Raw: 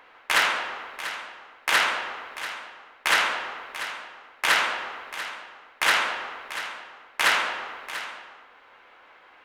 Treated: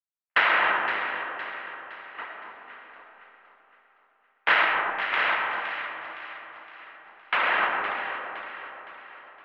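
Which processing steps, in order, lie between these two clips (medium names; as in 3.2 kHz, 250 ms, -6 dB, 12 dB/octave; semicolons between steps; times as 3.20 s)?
spectral levelling over time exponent 0.6; reverb removal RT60 0.75 s; trance gate "..xx........x" 84 bpm -60 dB; gate -31 dBFS, range -22 dB; low-pass 2.8 kHz 24 dB/octave; in parallel at -1 dB: compressor with a negative ratio -35 dBFS, ratio -1; on the sum: bass shelf 220 Hz -5.5 dB; echo whose repeats swap between lows and highs 257 ms, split 1.2 kHz, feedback 66%, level -5.5 dB; on a send at -1.5 dB: reverberation RT60 2.3 s, pre-delay 45 ms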